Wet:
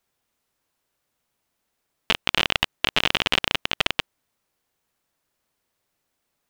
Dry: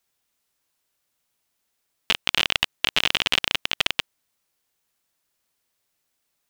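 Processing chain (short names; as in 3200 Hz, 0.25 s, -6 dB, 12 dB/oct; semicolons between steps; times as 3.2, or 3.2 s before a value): high shelf 2000 Hz -8.5 dB; gain +5 dB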